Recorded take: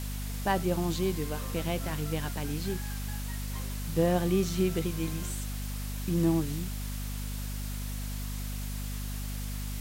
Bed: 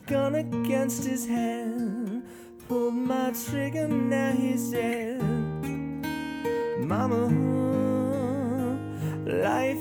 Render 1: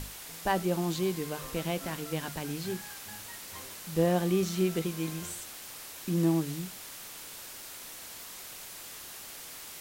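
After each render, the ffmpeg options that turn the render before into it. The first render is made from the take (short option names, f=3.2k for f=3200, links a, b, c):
-af "bandreject=f=50:t=h:w=6,bandreject=f=100:t=h:w=6,bandreject=f=150:t=h:w=6,bandreject=f=200:t=h:w=6,bandreject=f=250:t=h:w=6"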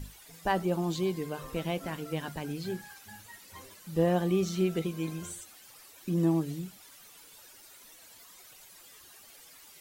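-af "afftdn=nr=13:nf=-45"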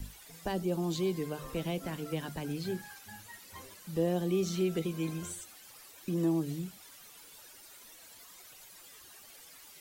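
-filter_complex "[0:a]acrossover=split=500|3000[a][b][c];[b]acompressor=threshold=-41dB:ratio=6[d];[a][d][c]amix=inputs=3:normalize=0,acrossover=split=260|1900[e][f][g];[e]alimiter=level_in=8.5dB:limit=-24dB:level=0:latency=1,volume=-8.5dB[h];[h][f][g]amix=inputs=3:normalize=0"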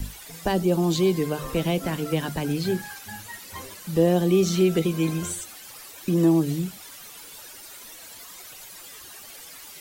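-af "volume=10.5dB"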